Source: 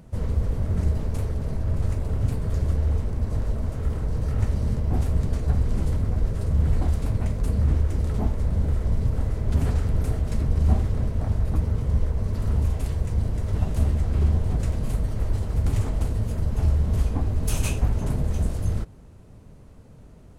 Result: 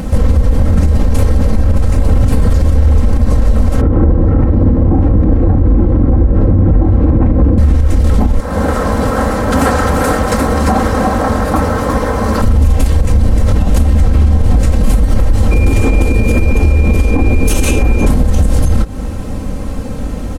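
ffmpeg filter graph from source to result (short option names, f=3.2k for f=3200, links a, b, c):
-filter_complex "[0:a]asettb=1/sr,asplit=3[a][b][c];[a]atrim=end=3.814[d];[b]atrim=start=3.81:end=7.58,asetpts=PTS-STARTPTS,afade=t=in:d=0.004:c=qsin,afade=t=out:st=3.766:d=0.004:c=qsin,lowpass=1.2k,equalizer=f=310:t=o:w=0.39:g=11.5,afreqshift=23[e];[c]atrim=start=7.576[f];[d][e]acrossfade=d=0.004:c1=hsin:c2=qsin[g];[g][f]acrossfade=d=0.004:c1=qsin:c2=hsin,asettb=1/sr,asplit=3[h][i][j];[h]atrim=end=8.404[k];[i]atrim=start=8.4:end=12.42,asetpts=PTS-STARTPTS,afade=t=in:d=0.004:c=qsin,afade=t=out:st=4.016:d=0.004:c=qsin,highpass=f=860:p=1,highshelf=f=1.9k:t=q:w=1.5:g=-6.5,aecho=1:1:348:0.531,atrim=end_sample=177282[l];[j]atrim=start=12.416[m];[k][l]acrossfade=d=0.004:c1=hsin:c2=qsin[n];[n][m]acrossfade=d=0.004:c1=qsin:c2=hsin,asettb=1/sr,asplit=3[o][p][q];[o]atrim=end=15.514[r];[p]atrim=start=15.51:end=18.06,asetpts=PTS-STARTPTS,afade=t=in:d=0.004:c=qsin,afade=t=out:st=2.546:d=0.004:c=qsin,equalizer=f=380:t=o:w=0.66:g=11.5,aeval=exprs='val(0)+0.00794*sin(2*PI*2400*n/s)':c=same[s];[q]atrim=start=18.056[t];[r][s]acrossfade=d=0.004:c1=hsin:c2=qsin[u];[u][t]acrossfade=d=0.004:c1=qsin:c2=hsin,aecho=1:1:3.8:0.65,acompressor=threshold=-29dB:ratio=6,alimiter=level_in=28dB:limit=-1dB:release=50:level=0:latency=1,volume=-1dB"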